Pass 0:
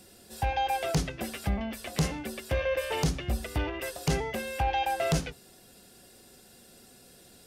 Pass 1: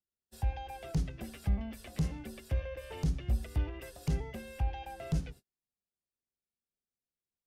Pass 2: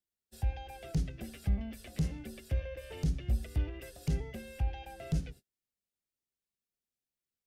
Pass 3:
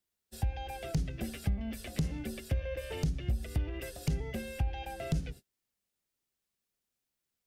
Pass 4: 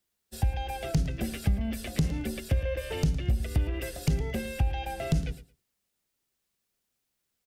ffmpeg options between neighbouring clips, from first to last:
-filter_complex "[0:a]agate=range=0.00891:threshold=0.00562:ratio=16:detection=peak,lowshelf=f=120:g=11,acrossover=split=330[s0][s1];[s1]acompressor=threshold=0.00794:ratio=2[s2];[s0][s2]amix=inputs=2:normalize=0,volume=0.398"
-af "equalizer=f=1000:w=1.9:g=-8"
-af "acompressor=threshold=0.0224:ratio=10,volume=2"
-af "aecho=1:1:112|224:0.158|0.0285,volume=1.88"

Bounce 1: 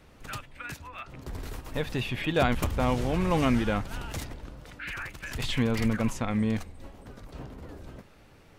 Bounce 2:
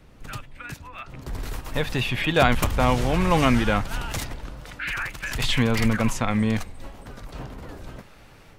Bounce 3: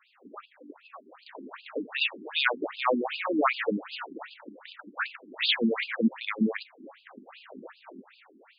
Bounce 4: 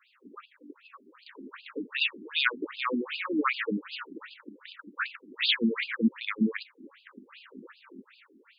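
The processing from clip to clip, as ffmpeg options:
-filter_complex "[0:a]equalizer=f=75:w=2.6:g=-6,acrossover=split=610[s0][s1];[s1]dynaudnorm=f=850:g=3:m=2.51[s2];[s0][s2]amix=inputs=2:normalize=0,lowshelf=f=200:g=8.5"
-af "afftfilt=real='re*between(b*sr/1024,270*pow(3600/270,0.5+0.5*sin(2*PI*2.6*pts/sr))/1.41,270*pow(3600/270,0.5+0.5*sin(2*PI*2.6*pts/sr))*1.41)':imag='im*between(b*sr/1024,270*pow(3600/270,0.5+0.5*sin(2*PI*2.6*pts/sr))/1.41,270*pow(3600/270,0.5+0.5*sin(2*PI*2.6*pts/sr))*1.41)':win_size=1024:overlap=0.75,volume=1.33"
-af "asuperstop=centerf=700:order=4:qfactor=0.97"

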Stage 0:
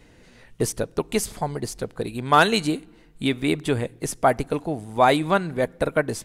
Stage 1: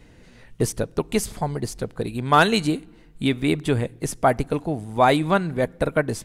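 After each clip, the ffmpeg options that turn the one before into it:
-af "bass=f=250:g=4,treble=f=4000:g=-1"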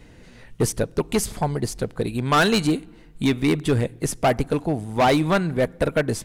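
-af "asoftclip=type=hard:threshold=0.158,volume=1.33"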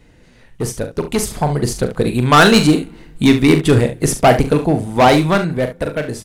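-filter_complex "[0:a]dynaudnorm=f=290:g=9:m=3.76,asplit=2[s0][s1];[s1]aecho=0:1:40|70:0.376|0.237[s2];[s0][s2]amix=inputs=2:normalize=0,volume=0.794"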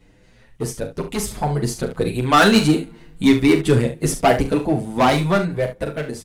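-filter_complex "[0:a]asplit=2[s0][s1];[s1]adelay=8,afreqshift=0.93[s2];[s0][s2]amix=inputs=2:normalize=1,volume=0.841"

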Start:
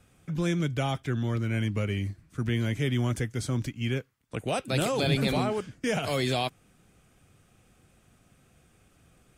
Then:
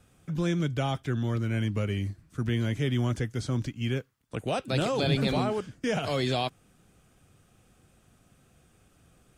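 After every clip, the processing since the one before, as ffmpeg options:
-filter_complex "[0:a]acrossover=split=7000[s0][s1];[s1]acompressor=threshold=0.00141:ratio=4:attack=1:release=60[s2];[s0][s2]amix=inputs=2:normalize=0,equalizer=f=2200:t=o:w=0.48:g=-3.5"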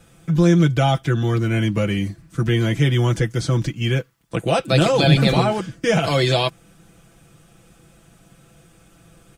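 -af "aecho=1:1:6:0.68,volume=2.82"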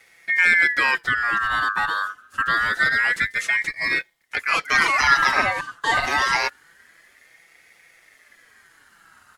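-af "aeval=exprs='val(0)*sin(2*PI*1700*n/s+1700*0.2/0.26*sin(2*PI*0.26*n/s))':c=same"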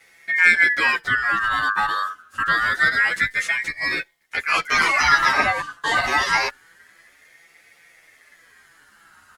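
-filter_complex "[0:a]asplit=2[s0][s1];[s1]adelay=11.5,afreqshift=0.56[s2];[s0][s2]amix=inputs=2:normalize=1,volume=1.58"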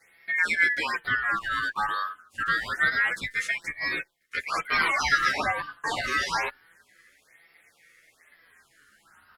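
-af "afftfilt=real='re*(1-between(b*sr/1024,760*pow(7900/760,0.5+0.5*sin(2*PI*1.1*pts/sr))/1.41,760*pow(7900/760,0.5+0.5*sin(2*PI*1.1*pts/sr))*1.41))':imag='im*(1-between(b*sr/1024,760*pow(7900/760,0.5+0.5*sin(2*PI*1.1*pts/sr))/1.41,760*pow(7900/760,0.5+0.5*sin(2*PI*1.1*pts/sr))*1.41))':win_size=1024:overlap=0.75,volume=0.531"

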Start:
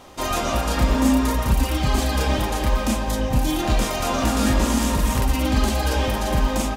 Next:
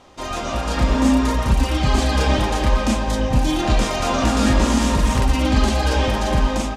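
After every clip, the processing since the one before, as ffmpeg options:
-af "lowpass=7400,dynaudnorm=f=260:g=5:m=3.76,volume=0.668"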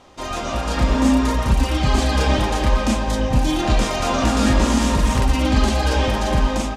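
-af anull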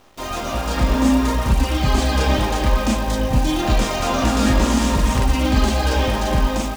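-af "acrusher=bits=7:dc=4:mix=0:aa=0.000001"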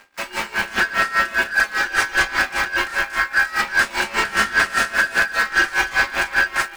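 -filter_complex "[0:a]aeval=exprs='val(0)*sin(2*PI*1600*n/s)':c=same,acrossover=split=340[s0][s1];[s1]asoftclip=type=tanh:threshold=0.188[s2];[s0][s2]amix=inputs=2:normalize=0,aeval=exprs='val(0)*pow(10,-19*(0.5-0.5*cos(2*PI*5*n/s))/20)':c=same,volume=2.37"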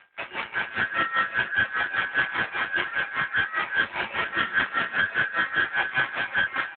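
-af "aeval=exprs='clip(val(0),-1,0.0794)':c=same,aecho=1:1:451:0.133,volume=0.841" -ar 8000 -c:a libopencore_amrnb -b:a 7400

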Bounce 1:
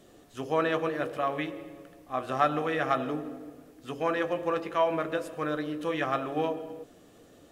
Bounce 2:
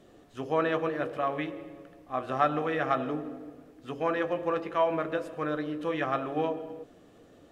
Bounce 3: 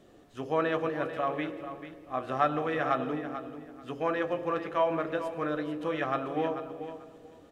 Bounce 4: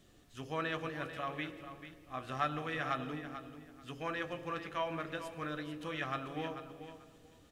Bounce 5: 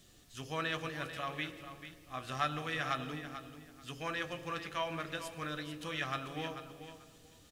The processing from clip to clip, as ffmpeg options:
-af "highshelf=f=5100:g=-11"
-af "aecho=1:1:440|880|1320:0.282|0.0535|0.0102,volume=0.891"
-af "equalizer=f=530:w=0.37:g=-15,volume=1.41"
-af "firequalizer=gain_entry='entry(160,0);entry(270,-3);entry(4600,7)':delay=0.05:min_phase=1,volume=1.12"

